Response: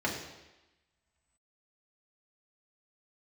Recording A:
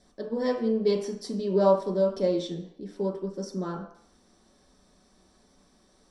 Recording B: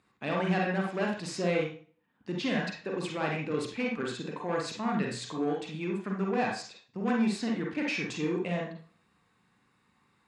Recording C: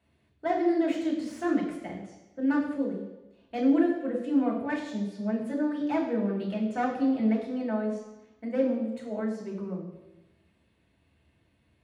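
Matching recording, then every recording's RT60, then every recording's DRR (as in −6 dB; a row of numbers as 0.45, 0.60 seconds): C; 0.60, 0.40, 1.0 seconds; −2.0, −1.0, −3.5 decibels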